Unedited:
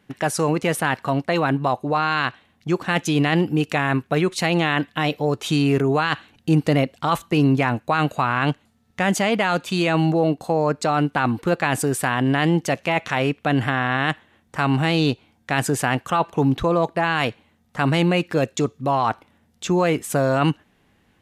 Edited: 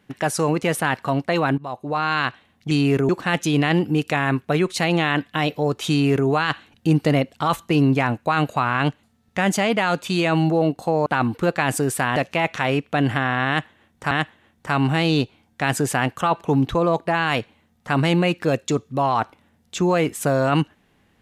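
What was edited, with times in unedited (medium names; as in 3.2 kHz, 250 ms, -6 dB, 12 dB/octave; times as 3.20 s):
1.58–2.12 s: fade in, from -16 dB
5.52–5.90 s: copy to 2.71 s
10.68–11.10 s: delete
12.20–12.68 s: delete
14.00–14.63 s: loop, 2 plays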